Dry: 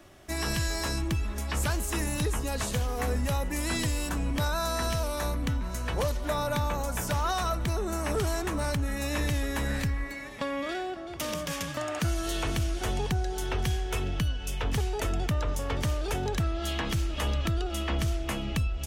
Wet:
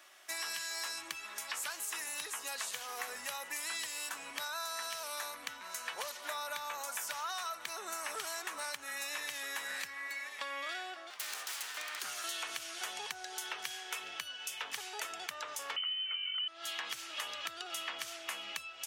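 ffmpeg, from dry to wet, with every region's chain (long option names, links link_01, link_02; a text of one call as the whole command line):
ffmpeg -i in.wav -filter_complex "[0:a]asettb=1/sr,asplit=3[link_01][link_02][link_03];[link_01]atrim=end=11.104[link_04];[link_02]atrim=start=11.1:end=12.24,asetpts=PTS-STARTPTS,afade=type=in:duration=0.004:curve=qsin,afade=type=out:start_time=1.136:duration=0.004:curve=qsin,equalizer=frequency=390:width=2.4:gain=-12.5,aeval=exprs='abs(val(0))':channel_layout=same[link_05];[link_03]atrim=start=12.236[link_06];[link_04][link_05]acrossfade=duration=0.004:curve1=hsin:curve2=qsin[link_07];[link_07][link_06]acrossfade=duration=0.004:curve1=qsin:curve2=hsin,asettb=1/sr,asplit=3[link_08][link_09][link_10];[link_08]atrim=end=15.764[link_11];[link_09]atrim=start=15.76:end=16.48,asetpts=PTS-STARTPTS,afade=type=in:duration=0.004:curve=qsin,afade=type=out:start_time=0.716:duration=0.004:curve=qsin,equalizer=frequency=570:width_type=o:width=2.6:gain=-4,aecho=1:1:1.1:0.66,atrim=end_sample=31752,lowpass=frequency=2600:width_type=q:width=0.5098,lowpass=frequency=2600:width_type=q:width=0.6013,lowpass=frequency=2600:width_type=q:width=0.9,lowpass=frequency=2600:width_type=q:width=2.563,afreqshift=-3100[link_12];[link_10]atrim=start=16.476[link_13];[link_11][link_12]acrossfade=duration=0.004:curve1=hsin:curve2=qsin[link_14];[link_14][link_13]acrossfade=duration=0.004:curve1=qsin:curve2=hsin,highpass=1200,acompressor=threshold=-37dB:ratio=6,volume=1dB" out.wav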